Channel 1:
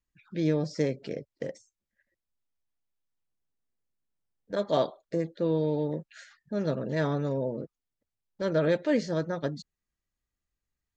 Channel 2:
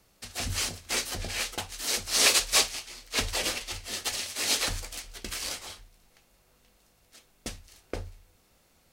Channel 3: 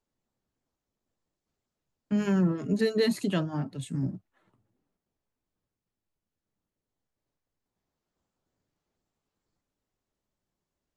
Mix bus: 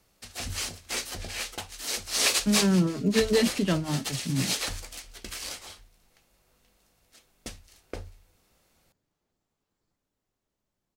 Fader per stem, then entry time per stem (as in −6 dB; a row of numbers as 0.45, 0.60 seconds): muted, −2.5 dB, +2.0 dB; muted, 0.00 s, 0.35 s